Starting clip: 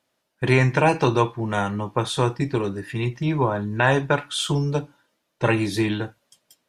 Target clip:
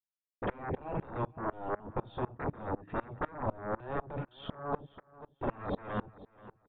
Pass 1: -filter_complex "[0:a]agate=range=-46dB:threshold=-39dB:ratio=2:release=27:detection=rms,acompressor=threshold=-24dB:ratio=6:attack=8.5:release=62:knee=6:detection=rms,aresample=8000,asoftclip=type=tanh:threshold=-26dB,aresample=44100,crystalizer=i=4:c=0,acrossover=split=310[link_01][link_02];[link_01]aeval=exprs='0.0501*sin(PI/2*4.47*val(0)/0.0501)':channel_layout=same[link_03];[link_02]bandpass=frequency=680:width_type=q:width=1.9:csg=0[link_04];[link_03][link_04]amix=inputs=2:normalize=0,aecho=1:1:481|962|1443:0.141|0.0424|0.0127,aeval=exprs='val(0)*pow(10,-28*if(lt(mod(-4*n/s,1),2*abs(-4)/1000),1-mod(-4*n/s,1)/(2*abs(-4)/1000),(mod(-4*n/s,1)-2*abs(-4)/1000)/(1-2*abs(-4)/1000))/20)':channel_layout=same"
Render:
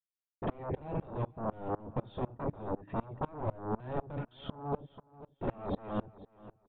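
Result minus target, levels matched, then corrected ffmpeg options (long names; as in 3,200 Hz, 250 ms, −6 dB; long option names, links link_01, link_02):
soft clipping: distortion +9 dB
-filter_complex "[0:a]agate=range=-46dB:threshold=-39dB:ratio=2:release=27:detection=rms,acompressor=threshold=-24dB:ratio=6:attack=8.5:release=62:knee=6:detection=rms,aresample=8000,asoftclip=type=tanh:threshold=-17.5dB,aresample=44100,crystalizer=i=4:c=0,acrossover=split=310[link_01][link_02];[link_01]aeval=exprs='0.0501*sin(PI/2*4.47*val(0)/0.0501)':channel_layout=same[link_03];[link_02]bandpass=frequency=680:width_type=q:width=1.9:csg=0[link_04];[link_03][link_04]amix=inputs=2:normalize=0,aecho=1:1:481|962|1443:0.141|0.0424|0.0127,aeval=exprs='val(0)*pow(10,-28*if(lt(mod(-4*n/s,1),2*abs(-4)/1000),1-mod(-4*n/s,1)/(2*abs(-4)/1000),(mod(-4*n/s,1)-2*abs(-4)/1000)/(1-2*abs(-4)/1000))/20)':channel_layout=same"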